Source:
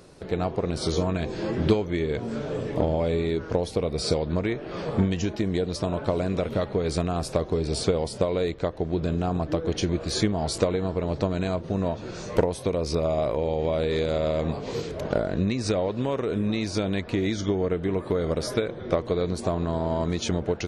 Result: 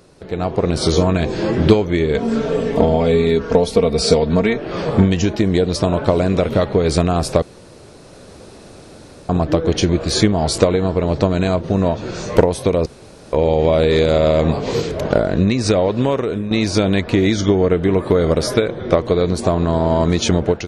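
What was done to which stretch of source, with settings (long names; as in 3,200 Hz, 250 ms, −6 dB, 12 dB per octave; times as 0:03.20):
0:02.14–0:04.58: comb filter 4.4 ms, depth 70%
0:07.42–0:09.29: fill with room tone
0:12.86–0:13.33: fill with room tone
0:16.06–0:16.51: fade out, to −11.5 dB
whole clip: automatic gain control gain up to 10.5 dB; level +1 dB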